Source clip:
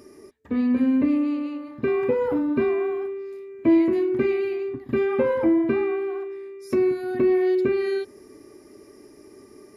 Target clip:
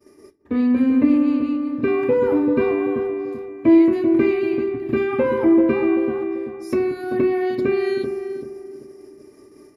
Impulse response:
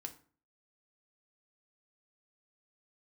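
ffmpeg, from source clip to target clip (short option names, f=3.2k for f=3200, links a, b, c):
-filter_complex "[0:a]agate=range=-33dB:threshold=-42dB:ratio=3:detection=peak,asplit=2[a][b];[b]adelay=387,lowpass=f=800:p=1,volume=-5.5dB,asplit=2[c][d];[d]adelay=387,lowpass=f=800:p=1,volume=0.43,asplit=2[e][f];[f]adelay=387,lowpass=f=800:p=1,volume=0.43,asplit=2[g][h];[h]adelay=387,lowpass=f=800:p=1,volume=0.43,asplit=2[i][j];[j]adelay=387,lowpass=f=800:p=1,volume=0.43[k];[a][c][e][g][i][k]amix=inputs=6:normalize=0,asplit=2[l][m];[1:a]atrim=start_sample=2205[n];[m][n]afir=irnorm=-1:irlink=0,volume=1.5dB[o];[l][o]amix=inputs=2:normalize=0,volume=-1.5dB"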